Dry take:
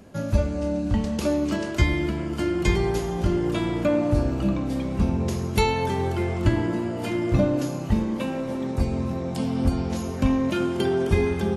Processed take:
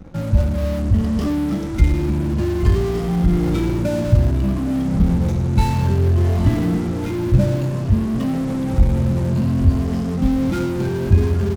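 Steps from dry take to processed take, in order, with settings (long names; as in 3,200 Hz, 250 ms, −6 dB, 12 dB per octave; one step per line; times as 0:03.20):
rippled gain that drifts along the octave scale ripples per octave 1.4, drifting +0.57 Hz, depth 20 dB
head-to-tape spacing loss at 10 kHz 29 dB
in parallel at −11 dB: fuzz pedal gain 39 dB, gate −47 dBFS
on the sum: automatic gain control gain up to 6 dB
bass and treble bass +11 dB, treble +7 dB
on a send: single-tap delay 816 ms −15 dB
on the sum: level −10.5 dB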